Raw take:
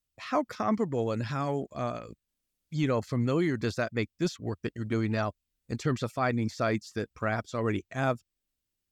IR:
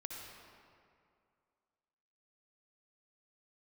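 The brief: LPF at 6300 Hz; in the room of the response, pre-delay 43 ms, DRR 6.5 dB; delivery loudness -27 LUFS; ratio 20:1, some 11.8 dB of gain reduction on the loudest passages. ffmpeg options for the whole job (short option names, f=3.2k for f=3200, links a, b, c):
-filter_complex "[0:a]lowpass=6.3k,acompressor=threshold=-34dB:ratio=20,asplit=2[a][b];[1:a]atrim=start_sample=2205,adelay=43[c];[b][c]afir=irnorm=-1:irlink=0,volume=-5dB[d];[a][d]amix=inputs=2:normalize=0,volume=12.5dB"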